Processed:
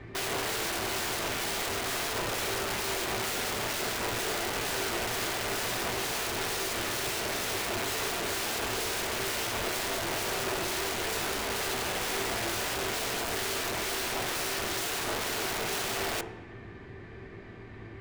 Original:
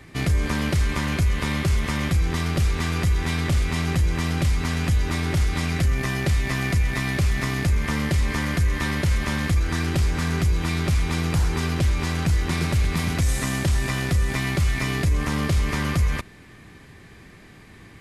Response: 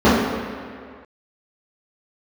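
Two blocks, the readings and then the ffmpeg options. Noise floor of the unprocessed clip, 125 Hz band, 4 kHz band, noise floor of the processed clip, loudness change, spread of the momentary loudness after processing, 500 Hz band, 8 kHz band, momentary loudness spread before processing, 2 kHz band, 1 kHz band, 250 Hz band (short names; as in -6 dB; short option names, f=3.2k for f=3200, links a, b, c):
-47 dBFS, -22.0 dB, +0.5 dB, -45 dBFS, -7.0 dB, 2 LU, -0.5 dB, +2.0 dB, 1 LU, -4.0 dB, -1.0 dB, -13.0 dB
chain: -filter_complex "[0:a]adynamicsmooth=sensitivity=2:basefreq=3.1k,aeval=exprs='(mod(26.6*val(0)+1,2)-1)/26.6':c=same,asplit=2[a][b];[1:a]atrim=start_sample=2205,asetrate=74970,aresample=44100[c];[b][c]afir=irnorm=-1:irlink=0,volume=-32.5dB[d];[a][d]amix=inputs=2:normalize=0"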